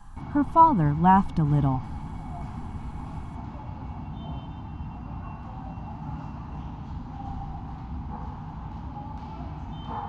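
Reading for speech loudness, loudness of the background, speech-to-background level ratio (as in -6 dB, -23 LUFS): -21.5 LUFS, -37.5 LUFS, 16.0 dB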